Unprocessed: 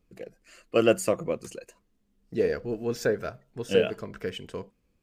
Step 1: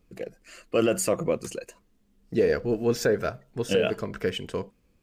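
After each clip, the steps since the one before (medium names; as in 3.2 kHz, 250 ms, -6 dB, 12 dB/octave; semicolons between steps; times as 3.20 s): peak limiter -18.5 dBFS, peak gain reduction 10.5 dB; trim +5.5 dB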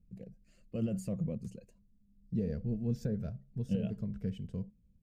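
FFT filter 210 Hz 0 dB, 320 Hz -20 dB, 550 Hz -18 dB, 1.2 kHz -30 dB, 3.8 kHz -23 dB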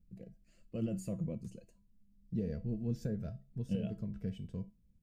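feedback comb 330 Hz, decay 0.26 s, harmonics all, mix 70%; trim +7 dB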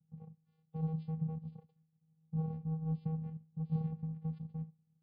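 vocoder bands 4, square 159 Hz; trim +1.5 dB; MP3 24 kbps 11.025 kHz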